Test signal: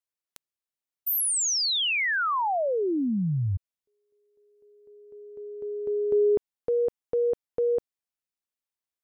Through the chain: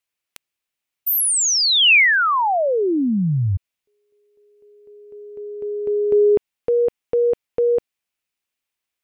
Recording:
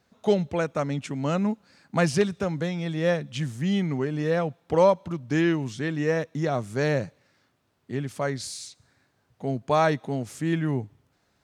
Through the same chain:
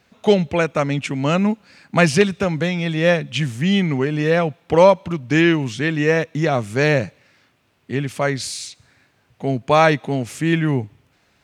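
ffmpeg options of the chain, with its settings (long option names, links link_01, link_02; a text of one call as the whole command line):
ffmpeg -i in.wav -af "equalizer=frequency=2500:width_type=o:width=0.85:gain=7.5,volume=7dB" out.wav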